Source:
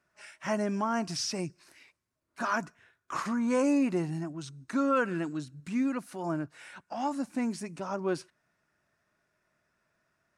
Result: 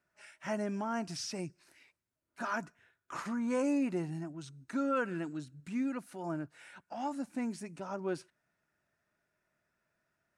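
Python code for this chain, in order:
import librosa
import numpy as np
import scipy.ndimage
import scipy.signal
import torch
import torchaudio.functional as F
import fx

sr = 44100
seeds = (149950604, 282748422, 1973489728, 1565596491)

y = fx.peak_eq(x, sr, hz=5200.0, db=-2.5, octaves=0.77)
y = fx.notch(y, sr, hz=1100.0, q=11.0)
y = F.gain(torch.from_numpy(y), -5.0).numpy()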